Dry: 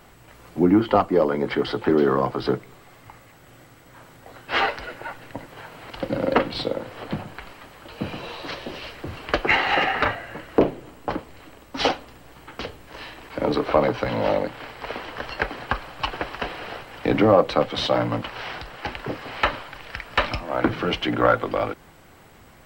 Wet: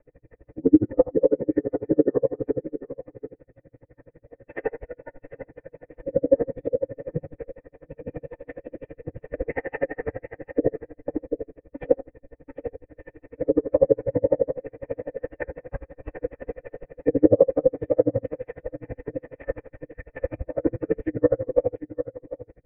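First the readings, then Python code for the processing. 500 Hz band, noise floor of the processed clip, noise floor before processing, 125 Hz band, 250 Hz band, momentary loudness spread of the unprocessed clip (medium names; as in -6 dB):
+0.5 dB, -71 dBFS, -50 dBFS, -4.0 dB, -1.0 dB, 17 LU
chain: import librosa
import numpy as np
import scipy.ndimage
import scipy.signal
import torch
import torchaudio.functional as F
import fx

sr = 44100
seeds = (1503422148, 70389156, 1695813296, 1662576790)

p1 = fx.formant_cascade(x, sr, vowel='e')
p2 = fx.tilt_eq(p1, sr, slope=-4.0)
p3 = fx.rotary(p2, sr, hz=5.5)
p4 = fx.rev_fdn(p3, sr, rt60_s=0.33, lf_ratio=0.95, hf_ratio=0.5, size_ms=20.0, drr_db=-5.5)
p5 = fx.env_lowpass_down(p4, sr, base_hz=1500.0, full_db=-19.0)
p6 = fx.notch(p5, sr, hz=1400.0, q=24.0)
p7 = p6 + fx.echo_single(p6, sr, ms=730, db=-12.5, dry=0)
p8 = p7 * 10.0 ** (-38 * (0.5 - 0.5 * np.cos(2.0 * np.pi * 12.0 * np.arange(len(p7)) / sr)) / 20.0)
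y = F.gain(torch.from_numpy(p8), 4.5).numpy()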